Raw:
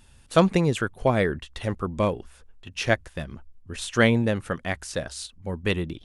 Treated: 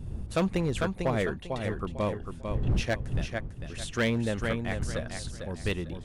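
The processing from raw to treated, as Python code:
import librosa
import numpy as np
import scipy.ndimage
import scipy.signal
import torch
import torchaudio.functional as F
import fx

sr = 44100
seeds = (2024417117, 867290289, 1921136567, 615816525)

y = fx.dmg_wind(x, sr, seeds[0], corner_hz=100.0, level_db=-29.0)
y = fx.echo_feedback(y, sr, ms=448, feedback_pct=27, wet_db=-6.5)
y = np.clip(y, -10.0 ** (-14.5 / 20.0), 10.0 ** (-14.5 / 20.0))
y = y * librosa.db_to_amplitude(-6.0)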